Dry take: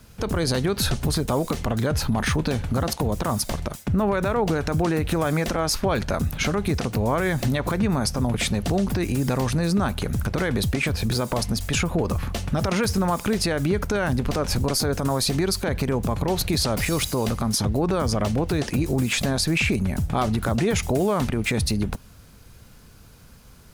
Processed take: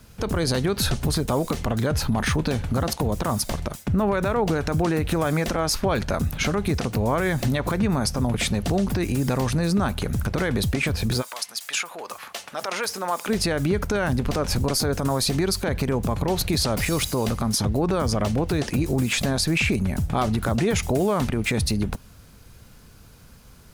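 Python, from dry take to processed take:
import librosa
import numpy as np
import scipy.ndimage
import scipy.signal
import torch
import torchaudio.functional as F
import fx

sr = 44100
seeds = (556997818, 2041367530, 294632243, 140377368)

y = fx.highpass(x, sr, hz=fx.line((11.21, 1500.0), (13.28, 430.0)), slope=12, at=(11.21, 13.28), fade=0.02)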